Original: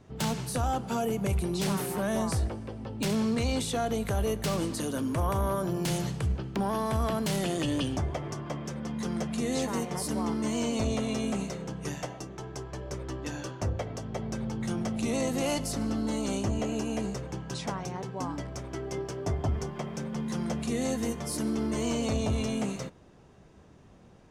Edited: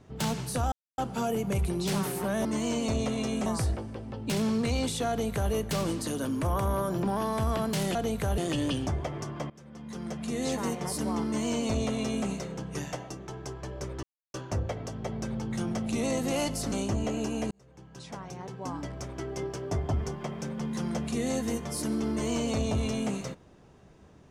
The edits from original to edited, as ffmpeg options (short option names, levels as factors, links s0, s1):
-filter_complex "[0:a]asplit=12[s0][s1][s2][s3][s4][s5][s6][s7][s8][s9][s10][s11];[s0]atrim=end=0.72,asetpts=PTS-STARTPTS,afade=t=out:st=0.716:d=0.004:c=hsin,apad=pad_dur=0.26[s12];[s1]atrim=start=0.72:end=2.192,asetpts=PTS-STARTPTS,afade=t=in:d=0.004:c=hsin[s13];[s2]atrim=start=10.358:end=11.372[s14];[s3]atrim=start=2.188:end=5.762[s15];[s4]atrim=start=6.558:end=7.482[s16];[s5]atrim=start=3.818:end=4.252[s17];[s6]atrim=start=7.478:end=8.6,asetpts=PTS-STARTPTS,afade=t=out:st=1.118:d=0.004:c=hsin:silence=0.1[s18];[s7]atrim=start=8.6:end=13.13,asetpts=PTS-STARTPTS,afade=t=in:d=1.08:silence=0.1,afade=t=out:st=4.526:d=0.004:c=hsin[s19];[s8]atrim=start=13.13:end=13.44,asetpts=PTS-STARTPTS,volume=0[s20];[s9]atrim=start=13.44:end=15.822,asetpts=PTS-STARTPTS,afade=t=in:d=0.004:c=hsin[s21];[s10]atrim=start=16.268:end=17.06,asetpts=PTS-STARTPTS,afade=t=out:st=0.788:d=0.004:c=hsin[s22];[s11]atrim=start=17.06,asetpts=PTS-STARTPTS,afade=t=in:d=1.49[s23];[s12][s13]concat=n=2:v=0:a=1[s24];[s24][s14]acrossfade=d=0.004:c1=hsin:c2=hsin[s25];[s25][s15]acrossfade=d=0.004:c1=hsin:c2=hsin[s26];[s26][s16]acrossfade=d=0.004:c1=hsin:c2=hsin[s27];[s27][s17]acrossfade=d=0.004:c1=hsin:c2=hsin[s28];[s18][s19][s20][s21]concat=n=4:v=0:a=1[s29];[s28][s29]acrossfade=d=0.004:c1=hsin:c2=hsin[s30];[s22][s23]concat=n=2:v=0:a=1[s31];[s30][s31]acrossfade=d=0.004:c1=hsin:c2=hsin"